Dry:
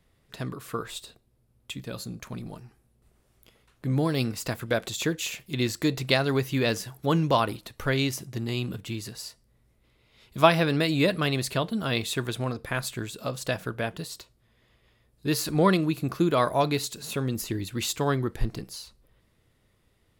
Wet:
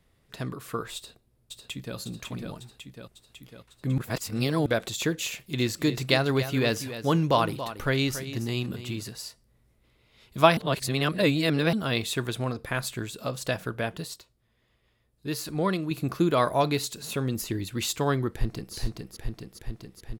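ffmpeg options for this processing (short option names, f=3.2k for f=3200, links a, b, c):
-filter_complex "[0:a]asplit=2[a][b];[b]afade=t=in:st=0.95:d=0.01,afade=t=out:st=1.97:d=0.01,aecho=0:1:550|1100|1650|2200|2750|3300|3850|4400|4950|5500:0.630957|0.410122|0.266579|0.173277|0.11263|0.0732094|0.0475861|0.030931|0.0201051|0.0130683[c];[a][c]amix=inputs=2:normalize=0,asettb=1/sr,asplit=3[d][e][f];[d]atrim=end=5.304[g];[e]atrim=start=5.3:end=9.03,asetpts=PTS-STARTPTS,afade=t=in:d=0.004:c=qsin,afade=t=out:st=3.726:d=0.004:c=qsin,aecho=1:1:281:0.251,atrim=end_sample=164493[h];[f]atrim=start=9.026[i];[g][h]acrossfade=d=0.004:c1=hsin:c2=qsin[j];[j][i]acrossfade=d=0.004:c1=qsin:c2=hsin,asplit=2[k][l];[l]afade=t=in:st=18.29:d=0.01,afade=t=out:st=18.74:d=0.01,aecho=0:1:420|840|1260|1680|2100|2520|2940|3360|3780|4200|4620|5040:0.707946|0.530959|0.39822|0.298665|0.223998|0.167999|0.125999|0.0944994|0.0708745|0.0531559|0.0398669|0.0299002[m];[k][m]amix=inputs=2:normalize=0,asplit=7[n][o][p][q][r][s][t];[n]atrim=end=3.982[u];[o]atrim=start=3.978:end=4.662,asetpts=PTS-STARTPTS,areverse[v];[p]atrim=start=4.658:end=10.572[w];[q]atrim=start=10.568:end=11.732,asetpts=PTS-STARTPTS,areverse[x];[r]atrim=start=11.728:end=14.142[y];[s]atrim=start=14.138:end=15.912,asetpts=PTS-STARTPTS,volume=-5.5dB[z];[t]atrim=start=15.908[aa];[u][v]acrossfade=d=0.004:c1=hsin:c2=hsin[ab];[ab][w]acrossfade=d=0.004:c1=hsin:c2=hsin[ac];[ac][x]acrossfade=d=0.004:c1=hsin:c2=hsin[ad];[ad][y]acrossfade=d=0.004:c1=hsin:c2=hsin[ae];[ae][z]acrossfade=d=0.004:c1=hsin:c2=hsin[af];[af][aa]acrossfade=d=0.004:c1=hsin:c2=hsin"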